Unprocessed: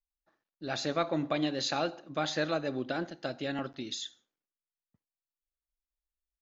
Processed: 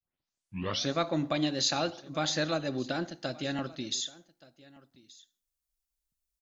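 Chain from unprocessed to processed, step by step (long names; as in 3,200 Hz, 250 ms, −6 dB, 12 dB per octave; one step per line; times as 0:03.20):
turntable start at the beginning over 0.93 s
bass and treble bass +4 dB, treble +9 dB
notch filter 440 Hz, Q 12
on a send: single-tap delay 1,175 ms −22 dB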